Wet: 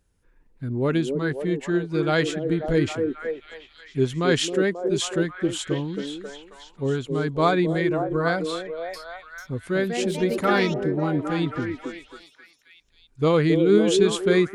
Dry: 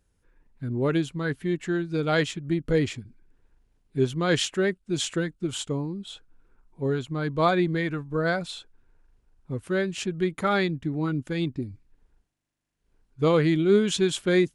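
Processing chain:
0:08.49–0:10.74: delay with pitch and tempo change per echo 445 ms, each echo +4 semitones, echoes 2, each echo −6 dB
echo through a band-pass that steps 269 ms, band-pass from 360 Hz, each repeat 0.7 octaves, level −2 dB
level +1.5 dB

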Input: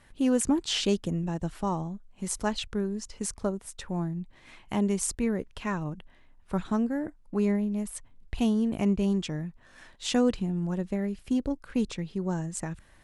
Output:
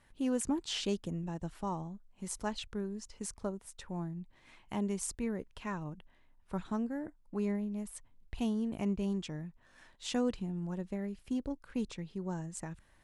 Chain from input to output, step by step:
parametric band 930 Hz +2.5 dB 0.3 octaves
level −8 dB

